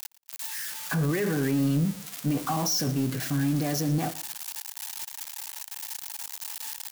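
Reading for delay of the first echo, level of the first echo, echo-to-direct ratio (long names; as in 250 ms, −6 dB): 115 ms, −18.5 dB, −18.5 dB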